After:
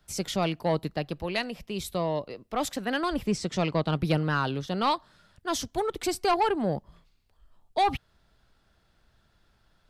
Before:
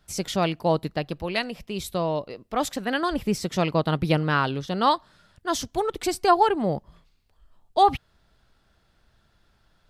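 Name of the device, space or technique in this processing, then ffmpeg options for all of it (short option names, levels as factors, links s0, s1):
one-band saturation: -filter_complex "[0:a]asettb=1/sr,asplit=3[s0][s1][s2];[s0]atrim=end=3.264[s3];[s1]atrim=start=3.26:end=3.97,asetpts=PTS-STARTPTS,afade=t=in:d=0.004:c=qsin,afade=t=out:st=0.706:d=0.004:c=qsin,lowpass=f=9000:w=0.5412,lowpass=f=9000:w=1.3066[s4];[s2]atrim=start=3.966[s5];[s3][s4]acrossfade=d=0.004:c1=hsin:c2=qsin[s6];[s6][s5]acrossfade=d=0.004:c1=qsin:c2=hsin,acrossover=split=210|3300[s7][s8][s9];[s8]asoftclip=type=tanh:threshold=0.158[s10];[s7][s10][s9]amix=inputs=3:normalize=0,volume=0.794"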